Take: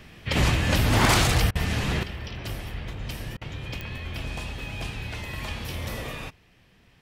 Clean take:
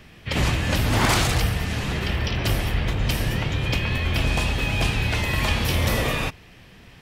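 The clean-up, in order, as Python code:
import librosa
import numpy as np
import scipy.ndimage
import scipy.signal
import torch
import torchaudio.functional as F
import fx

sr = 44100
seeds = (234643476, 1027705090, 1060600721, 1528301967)

y = fx.fix_declick_ar(x, sr, threshold=10.0)
y = fx.fix_interpolate(y, sr, at_s=(1.51, 3.37), length_ms=42.0)
y = fx.gain(y, sr, db=fx.steps((0.0, 0.0), (2.03, 11.0)))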